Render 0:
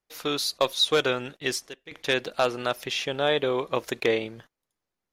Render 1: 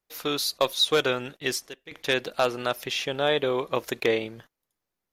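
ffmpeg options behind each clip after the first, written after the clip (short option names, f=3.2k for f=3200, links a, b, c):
-af "equalizer=f=13k:t=o:w=0.34:g=7"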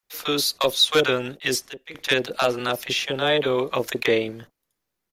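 -filter_complex "[0:a]acrossover=split=750[a][b];[a]adelay=30[c];[c][b]amix=inputs=2:normalize=0,volume=4.5dB"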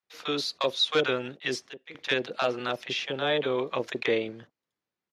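-af "highpass=110,lowpass=4.7k,volume=-5.5dB"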